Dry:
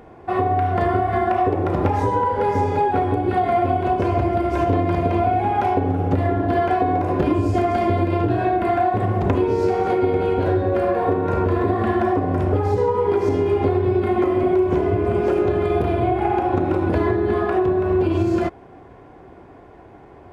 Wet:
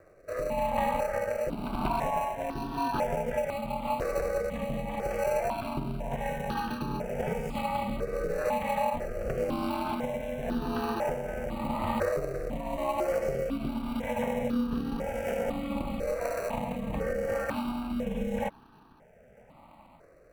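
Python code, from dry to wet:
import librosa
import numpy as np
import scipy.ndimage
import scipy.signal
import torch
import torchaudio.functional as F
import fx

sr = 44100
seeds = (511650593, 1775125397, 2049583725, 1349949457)

p1 = fx.low_shelf(x, sr, hz=310.0, db=-12.0)
p2 = p1 * np.sin(2.0 * np.pi * 130.0 * np.arange(len(p1)) / sr)
p3 = fx.sample_hold(p2, sr, seeds[0], rate_hz=1700.0, jitter_pct=0)
p4 = p2 + F.gain(torch.from_numpy(p3), -9.5).numpy()
p5 = fx.rotary(p4, sr, hz=0.9)
y = fx.phaser_held(p5, sr, hz=2.0, low_hz=880.0, high_hz=2100.0)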